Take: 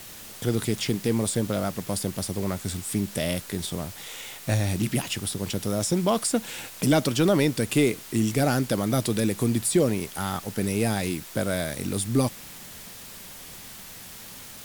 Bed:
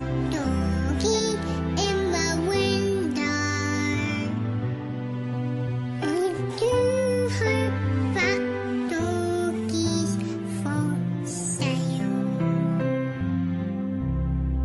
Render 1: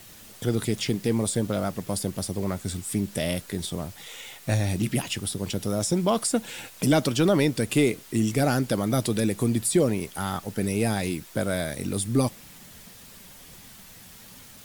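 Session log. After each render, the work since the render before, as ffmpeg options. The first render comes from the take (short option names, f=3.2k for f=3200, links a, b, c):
-af "afftdn=nr=6:nf=-43"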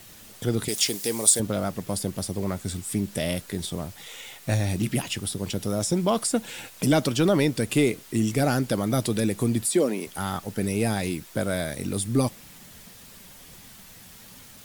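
-filter_complex "[0:a]asettb=1/sr,asplit=3[a][b][c];[a]atrim=end=0.684[d];[b]atrim=start=0.68:end=1.4,asetpts=PTS-STARTPTS,afade=t=in:d=0.004:c=qsin,afade=t=out:st=0.716:d=0.004:c=qsin,bass=f=250:g=-14,treble=f=4k:g=13[e];[c]atrim=start=1.396[f];[d][e]acrossfade=d=0.004:c1=hsin:c2=qsin[g];[g][f]acrossfade=d=0.004:c1=qsin:c2=hsin,asettb=1/sr,asplit=3[h][i][j];[h]atrim=end=3.284[k];[i]atrim=start=3.28:end=4.99,asetpts=PTS-STARTPTS,afade=t=in:d=0.004:c=qsin,afade=t=out:st=1.706:d=0.004:c=qsin,acrusher=bits=8:mode=log:mix=0:aa=0.000001[l];[j]atrim=start=4.986[m];[k][l]acrossfade=d=0.004:c1=hsin:c2=qsin[n];[n][m]acrossfade=d=0.004:c1=qsin:c2=hsin,asettb=1/sr,asplit=3[o][p][q];[o]atrim=end=9.654[r];[p]atrim=start=9.65:end=10.07,asetpts=PTS-STARTPTS,afade=t=in:d=0.004:c=qsin,afade=t=out:st=0.416:d=0.004:c=qsin,highpass=f=210:w=0.5412,highpass=f=210:w=1.3066[s];[q]atrim=start=10.066[t];[r][s]acrossfade=d=0.004:c1=hsin:c2=qsin[u];[u][t]acrossfade=d=0.004:c1=qsin:c2=hsin"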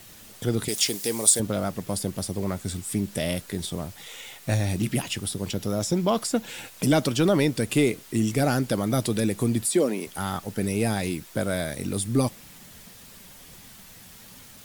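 -filter_complex "[0:a]asettb=1/sr,asplit=3[a][b][c];[a]atrim=end=5.514[d];[b]atrim=start=5.51:end=6.5,asetpts=PTS-STARTPTS,afade=t=in:d=0.004:c=qsin,afade=t=out:st=0.986:d=0.004:c=qsin,equalizer=f=9.1k:t=o:w=0.28:g=-8.5[e];[c]atrim=start=6.496[f];[d][e]acrossfade=d=0.004:c1=hsin:c2=qsin[g];[g][f]acrossfade=d=0.004:c1=qsin:c2=hsin"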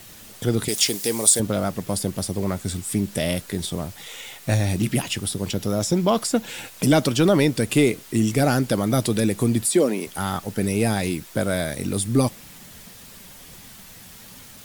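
-af "volume=3.5dB,alimiter=limit=-3dB:level=0:latency=1"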